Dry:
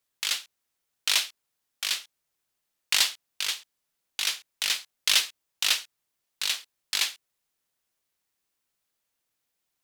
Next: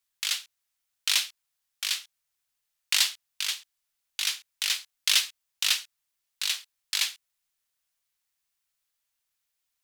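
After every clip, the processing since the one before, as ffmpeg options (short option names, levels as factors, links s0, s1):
-af "equalizer=f=290:t=o:w=2.7:g=-13.5"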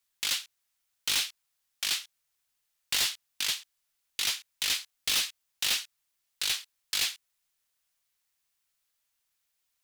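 -af "volume=18.8,asoftclip=hard,volume=0.0531,volume=1.26"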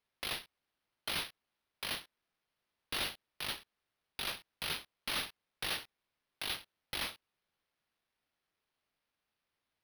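-af "acrusher=samples=6:mix=1:aa=0.000001,volume=0.355"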